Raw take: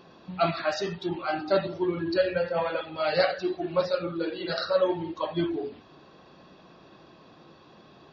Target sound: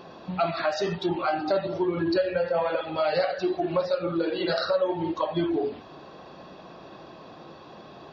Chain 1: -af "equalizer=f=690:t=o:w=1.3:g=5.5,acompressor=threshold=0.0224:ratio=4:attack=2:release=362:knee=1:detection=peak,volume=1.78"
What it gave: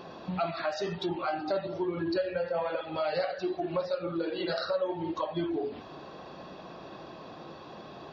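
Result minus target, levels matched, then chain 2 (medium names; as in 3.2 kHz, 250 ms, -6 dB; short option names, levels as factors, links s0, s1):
compression: peak gain reduction +5.5 dB
-af "equalizer=f=690:t=o:w=1.3:g=5.5,acompressor=threshold=0.0531:ratio=4:attack=2:release=362:knee=1:detection=peak,volume=1.78"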